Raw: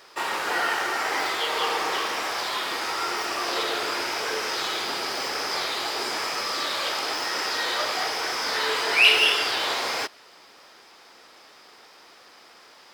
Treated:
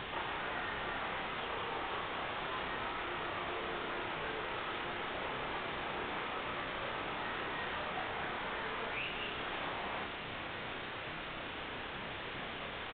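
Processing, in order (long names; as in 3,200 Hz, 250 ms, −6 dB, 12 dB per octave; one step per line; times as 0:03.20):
running median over 9 samples
downward compressor 6 to 1, threshold −41 dBFS, peak gain reduction 24 dB
bit-depth reduction 6 bits, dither triangular
high-frequency loss of the air 230 metres
downsampling to 8,000 Hz
on a send: backwards echo 31 ms −3.5 dB
on the sum: level +1 dB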